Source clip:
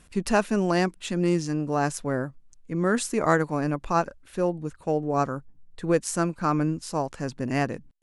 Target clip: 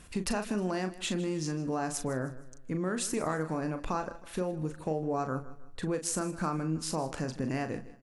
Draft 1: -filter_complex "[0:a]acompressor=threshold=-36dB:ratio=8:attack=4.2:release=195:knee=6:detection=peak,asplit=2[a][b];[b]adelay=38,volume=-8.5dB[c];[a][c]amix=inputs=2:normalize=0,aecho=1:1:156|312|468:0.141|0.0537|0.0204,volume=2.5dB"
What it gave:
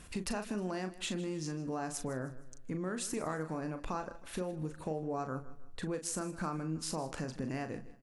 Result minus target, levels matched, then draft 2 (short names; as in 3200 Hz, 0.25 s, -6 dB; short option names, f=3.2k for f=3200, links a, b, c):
compressor: peak gain reduction +5 dB
-filter_complex "[0:a]acompressor=threshold=-30dB:ratio=8:attack=4.2:release=195:knee=6:detection=peak,asplit=2[a][b];[b]adelay=38,volume=-8.5dB[c];[a][c]amix=inputs=2:normalize=0,aecho=1:1:156|312|468:0.141|0.0537|0.0204,volume=2.5dB"